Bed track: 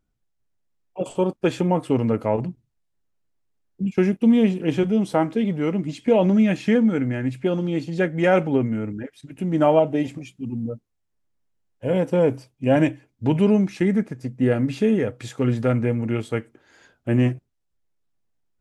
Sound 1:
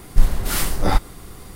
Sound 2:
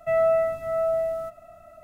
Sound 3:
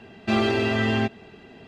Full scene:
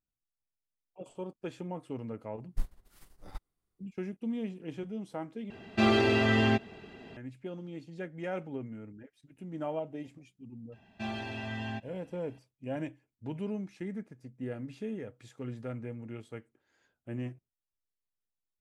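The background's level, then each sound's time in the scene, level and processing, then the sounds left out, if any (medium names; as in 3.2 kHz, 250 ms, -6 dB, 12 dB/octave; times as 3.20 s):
bed track -18.5 dB
2.40 s: add 1 -15.5 dB + upward expansion 2.5:1, over -25 dBFS
5.50 s: replace with 3 -2.5 dB
10.72 s: add 3 -16 dB + comb 1.2 ms
not used: 2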